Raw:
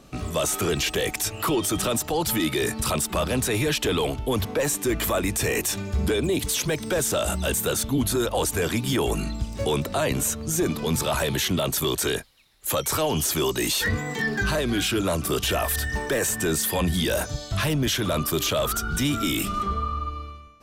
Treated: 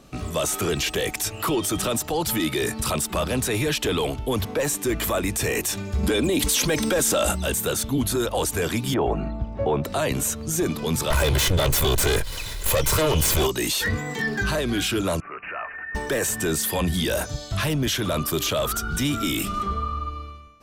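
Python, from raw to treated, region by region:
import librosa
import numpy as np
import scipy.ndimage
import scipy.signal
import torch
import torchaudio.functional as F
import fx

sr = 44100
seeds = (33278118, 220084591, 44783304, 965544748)

y = fx.chain(x, sr, fx.peak_eq(hz=94.0, db=-8.5, octaves=0.67),
    fx.comb(ms=3.7, depth=0.32),
    fx.env_flatten(amount_pct=70), at=(6.03, 7.32))
y = fx.chain(y, sr, fx.lowpass(hz=1600.0, slope=12),
    fx.peak_eq(hz=700.0, db=8.0, octaves=0.65), at=(8.94, 9.84))
y = fx.chain(y, sr, fx.lower_of_two(delay_ms=2.0),
    fx.low_shelf(hz=140.0, db=10.5),
    fx.env_flatten(amount_pct=70), at=(11.1, 13.47))
y = fx.chain(y, sr, fx.bandpass_q(hz=1500.0, q=1.8),
    fx.resample_bad(factor=8, down='none', up='filtered'), at=(15.2, 15.95))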